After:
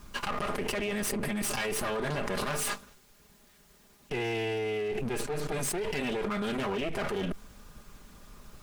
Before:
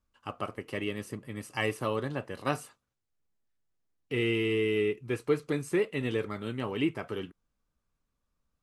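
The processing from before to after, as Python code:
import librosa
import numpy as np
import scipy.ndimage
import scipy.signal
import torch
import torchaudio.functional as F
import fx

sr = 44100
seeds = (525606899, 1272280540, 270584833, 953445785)

y = fx.lower_of_two(x, sr, delay_ms=4.9)
y = fx.env_flatten(y, sr, amount_pct=100)
y = F.gain(torch.from_numpy(y), -8.0).numpy()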